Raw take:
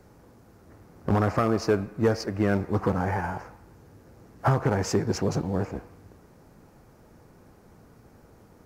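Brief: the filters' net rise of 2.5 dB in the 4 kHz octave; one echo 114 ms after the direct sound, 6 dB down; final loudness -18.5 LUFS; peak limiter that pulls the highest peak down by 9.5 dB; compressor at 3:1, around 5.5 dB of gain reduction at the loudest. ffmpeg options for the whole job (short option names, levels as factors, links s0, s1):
-af "equalizer=f=4000:t=o:g=3.5,acompressor=threshold=0.0562:ratio=3,alimiter=limit=0.0708:level=0:latency=1,aecho=1:1:114:0.501,volume=5.62"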